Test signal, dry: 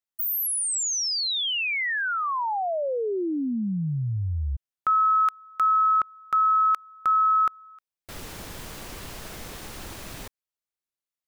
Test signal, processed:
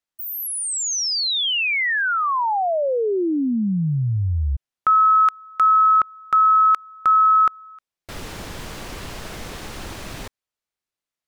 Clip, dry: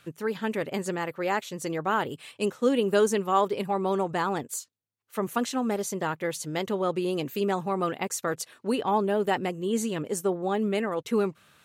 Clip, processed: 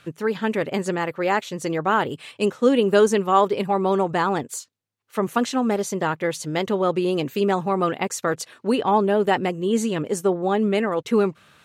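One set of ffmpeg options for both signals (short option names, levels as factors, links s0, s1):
-af "highshelf=f=9800:g=-11.5,volume=2"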